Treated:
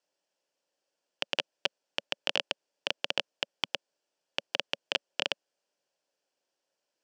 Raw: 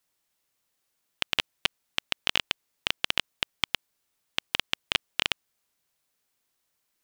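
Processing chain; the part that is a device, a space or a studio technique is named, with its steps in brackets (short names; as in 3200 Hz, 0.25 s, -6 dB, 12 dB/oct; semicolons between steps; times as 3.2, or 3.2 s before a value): television speaker (speaker cabinet 190–6600 Hz, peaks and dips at 220 Hz -9 dB, 560 Hz +9 dB, 1200 Hz -9 dB, 2100 Hz -10 dB, 3800 Hz -9 dB, 6500 Hz -4 dB)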